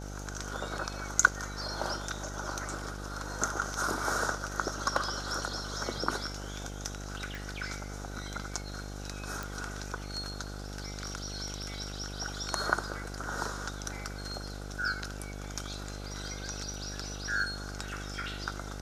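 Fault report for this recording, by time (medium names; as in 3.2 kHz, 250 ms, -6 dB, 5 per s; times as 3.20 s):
buzz 50 Hz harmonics 17 -41 dBFS
7.35 s: pop
9.43 s: pop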